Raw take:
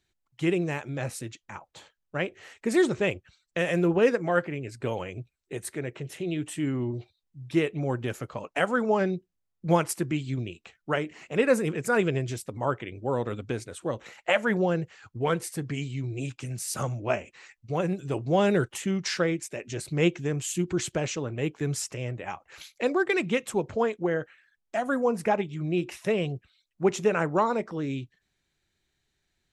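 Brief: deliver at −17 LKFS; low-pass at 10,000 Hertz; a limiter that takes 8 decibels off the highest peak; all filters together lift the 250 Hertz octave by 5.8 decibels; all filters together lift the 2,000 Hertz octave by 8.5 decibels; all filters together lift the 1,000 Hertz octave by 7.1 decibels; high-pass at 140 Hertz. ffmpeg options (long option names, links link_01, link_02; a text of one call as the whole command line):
ffmpeg -i in.wav -af "highpass=140,lowpass=10000,equalizer=frequency=250:width_type=o:gain=8.5,equalizer=frequency=1000:width_type=o:gain=6.5,equalizer=frequency=2000:width_type=o:gain=8.5,volume=8dB,alimiter=limit=-2dB:level=0:latency=1" out.wav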